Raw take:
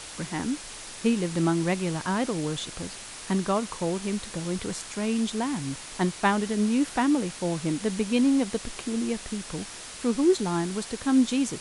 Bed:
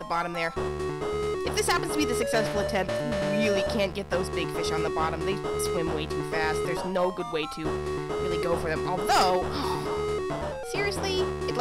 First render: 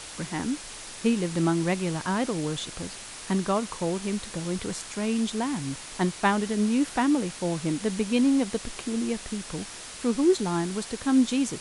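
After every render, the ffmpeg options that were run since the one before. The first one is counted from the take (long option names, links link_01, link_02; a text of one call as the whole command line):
ffmpeg -i in.wav -af anull out.wav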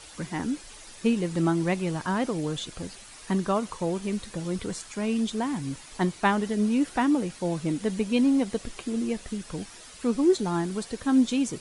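ffmpeg -i in.wav -af "afftdn=noise_reduction=9:noise_floor=-41" out.wav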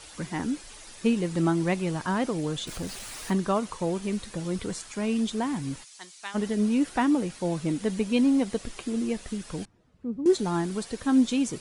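ffmpeg -i in.wav -filter_complex "[0:a]asettb=1/sr,asplit=3[link_01][link_02][link_03];[link_01]atrim=end=2.674[link_04];[link_02]atrim=start=2.67:end=3.33,asetpts=PTS-STARTPTS,afade=type=in:duration=0.004:curve=qsin,afade=type=out:start_time=0.656:duration=0.004:curve=qsin,aeval=exprs='val(0)+0.5*0.0126*sgn(val(0))':channel_layout=same[link_05];[link_03]atrim=start=3.326[link_06];[link_04][link_05]acrossfade=duration=0.004:curve1=hsin:curve2=qsin[link_07];[link_07][link_06]acrossfade=duration=0.004:curve1=qsin:curve2=hsin,asplit=3[link_08][link_09][link_10];[link_08]afade=type=out:start_time=5.83:duration=0.02[link_11];[link_09]bandpass=frequency=6500:width_type=q:width=0.99,afade=type=in:start_time=5.83:duration=0.02,afade=type=out:start_time=6.34:duration=0.02[link_12];[link_10]afade=type=in:start_time=6.34:duration=0.02[link_13];[link_11][link_12][link_13]amix=inputs=3:normalize=0,asettb=1/sr,asplit=3[link_14][link_15][link_16];[link_14]atrim=end=9.654[link_17];[link_15]atrim=start=9.65:end=10.26,asetpts=PTS-STARTPTS,afade=type=in:duration=0.004:curve=qsin,afade=type=out:start_time=0.606:duration=0.004:curve=qsin,bandpass=frequency=120:width_type=q:width=1.1[link_18];[link_16]atrim=start=10.256[link_19];[link_17][link_18]acrossfade=duration=0.004:curve1=hsin:curve2=qsin[link_20];[link_20][link_19]acrossfade=duration=0.004:curve1=qsin:curve2=hsin" out.wav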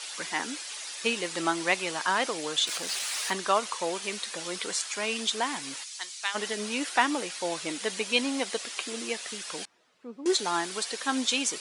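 ffmpeg -i in.wav -af "highpass=490,equalizer=frequency=4100:width=0.31:gain=10" out.wav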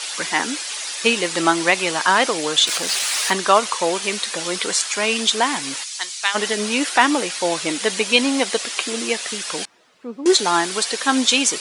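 ffmpeg -i in.wav -af "volume=10.5dB,alimiter=limit=-1dB:level=0:latency=1" out.wav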